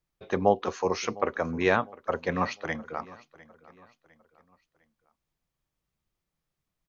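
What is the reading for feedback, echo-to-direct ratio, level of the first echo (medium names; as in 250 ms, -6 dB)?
40%, -20.5 dB, -21.0 dB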